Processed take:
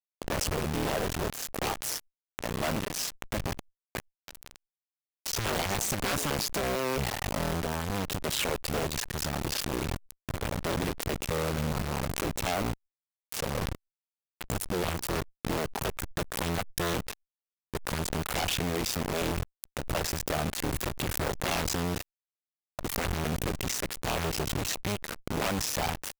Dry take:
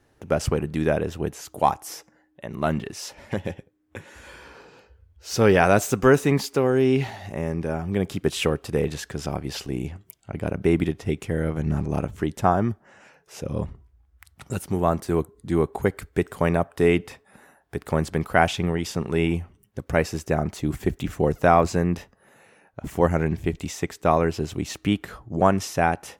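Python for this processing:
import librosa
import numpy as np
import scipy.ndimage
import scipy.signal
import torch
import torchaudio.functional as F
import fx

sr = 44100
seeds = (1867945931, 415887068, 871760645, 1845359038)

y = fx.cycle_switch(x, sr, every=2, mode='muted')
y = (np.mod(10.0 ** (12.5 / 20.0) * y + 1.0, 2.0) - 1.0) / 10.0 ** (12.5 / 20.0)
y = fx.quant_dither(y, sr, seeds[0], bits=6, dither='none')
y = fx.fuzz(y, sr, gain_db=46.0, gate_db=-53.0)
y = fx.pre_swell(y, sr, db_per_s=75.0)
y = y * 10.0 ** (-12.5 / 20.0)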